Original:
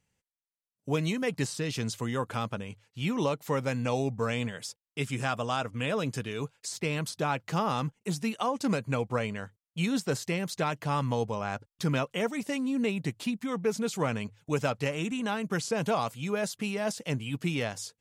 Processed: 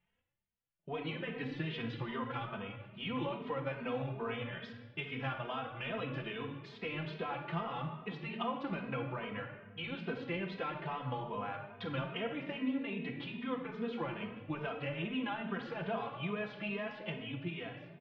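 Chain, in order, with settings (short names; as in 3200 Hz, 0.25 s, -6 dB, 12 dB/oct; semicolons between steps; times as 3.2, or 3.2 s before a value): ending faded out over 1.22 s; elliptic low-pass 3300 Hz, stop band 80 dB; bell 150 Hz -6.5 dB 2.5 oct; compressor, threshold -36 dBFS, peak gain reduction 11 dB; on a send at -2 dB: reverb RT60 1.3 s, pre-delay 6 ms; on the sum: endless flanger 2.9 ms +2.4 Hz; gain +2 dB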